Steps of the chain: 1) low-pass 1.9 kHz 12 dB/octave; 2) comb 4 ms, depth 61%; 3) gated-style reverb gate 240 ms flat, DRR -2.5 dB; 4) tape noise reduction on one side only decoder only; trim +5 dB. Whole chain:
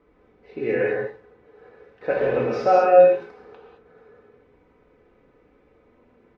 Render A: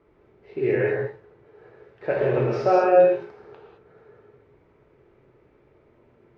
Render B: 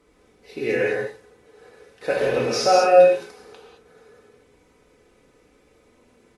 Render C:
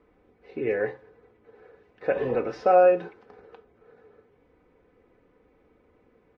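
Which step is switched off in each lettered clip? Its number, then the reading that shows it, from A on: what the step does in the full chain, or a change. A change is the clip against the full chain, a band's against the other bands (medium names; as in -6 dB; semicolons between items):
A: 2, 125 Hz band +9.0 dB; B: 1, 2 kHz band +3.0 dB; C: 3, 250 Hz band +1.5 dB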